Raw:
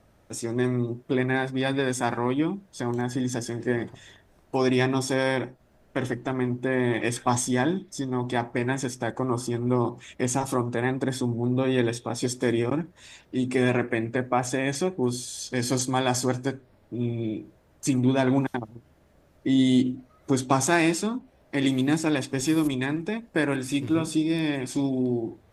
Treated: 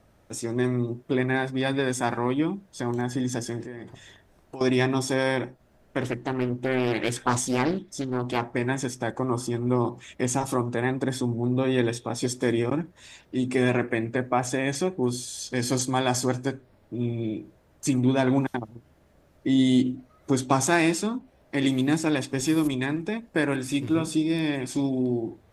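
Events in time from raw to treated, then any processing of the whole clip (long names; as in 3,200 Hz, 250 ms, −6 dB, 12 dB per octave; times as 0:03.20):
0:03.62–0:04.61: downward compressor 4 to 1, threshold −36 dBFS
0:06.02–0:08.54: highs frequency-modulated by the lows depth 0.5 ms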